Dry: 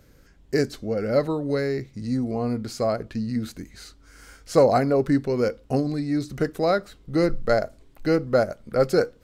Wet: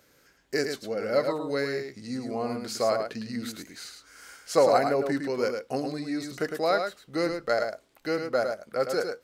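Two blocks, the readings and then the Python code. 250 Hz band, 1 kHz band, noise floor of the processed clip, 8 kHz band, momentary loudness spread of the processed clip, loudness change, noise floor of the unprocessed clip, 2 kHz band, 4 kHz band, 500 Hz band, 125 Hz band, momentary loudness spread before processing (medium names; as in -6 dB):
-7.5 dB, -1.0 dB, -63 dBFS, +2.0 dB, 12 LU, -4.0 dB, -54 dBFS, 0.0 dB, +1.0 dB, -3.5 dB, -12.5 dB, 8 LU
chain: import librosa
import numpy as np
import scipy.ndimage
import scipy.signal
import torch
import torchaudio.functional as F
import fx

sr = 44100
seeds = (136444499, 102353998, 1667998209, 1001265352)

y = fx.highpass(x, sr, hz=720.0, slope=6)
y = fx.rider(y, sr, range_db=4, speed_s=2.0)
y = y + 10.0 ** (-6.0 / 20.0) * np.pad(y, (int(107 * sr / 1000.0), 0))[:len(y)]
y = y * librosa.db_to_amplitude(-1.0)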